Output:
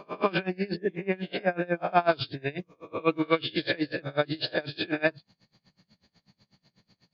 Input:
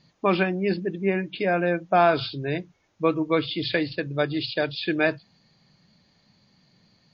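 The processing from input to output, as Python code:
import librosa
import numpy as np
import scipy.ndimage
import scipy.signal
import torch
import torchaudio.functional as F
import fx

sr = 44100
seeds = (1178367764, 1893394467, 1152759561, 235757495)

y = fx.spec_swells(x, sr, rise_s=0.59)
y = fx.dynamic_eq(y, sr, hz=2700.0, q=1.7, threshold_db=-41.0, ratio=4.0, max_db=5, at=(2.31, 3.62))
y = y * 10.0 ** (-26 * (0.5 - 0.5 * np.cos(2.0 * np.pi * 8.1 * np.arange(len(y)) / sr)) / 20.0)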